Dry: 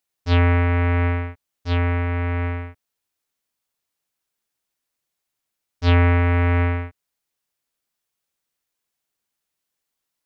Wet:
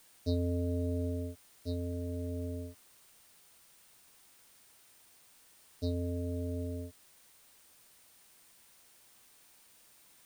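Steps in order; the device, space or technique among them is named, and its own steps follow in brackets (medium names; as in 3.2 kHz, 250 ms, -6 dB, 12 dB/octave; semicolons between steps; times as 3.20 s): FFT band-reject 740–3700 Hz; medium wave at night (band-pass 120–3800 Hz; compression, threshold -28 dBFS, peak gain reduction 12 dB; tremolo 0.22 Hz, depth 43%; whistle 9 kHz -68 dBFS; white noise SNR 23 dB)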